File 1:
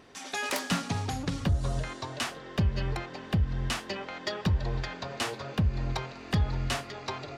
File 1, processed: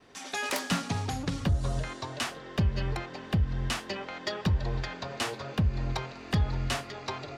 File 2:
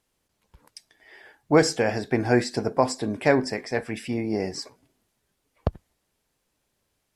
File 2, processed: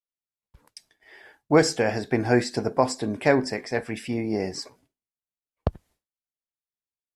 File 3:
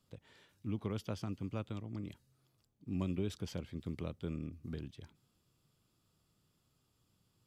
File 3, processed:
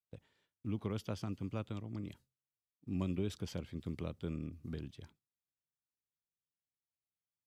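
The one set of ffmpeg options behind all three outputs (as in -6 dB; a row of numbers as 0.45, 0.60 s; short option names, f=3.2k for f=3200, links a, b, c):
-af "agate=range=-33dB:threshold=-53dB:ratio=3:detection=peak"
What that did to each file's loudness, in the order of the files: 0.0, 0.0, 0.0 LU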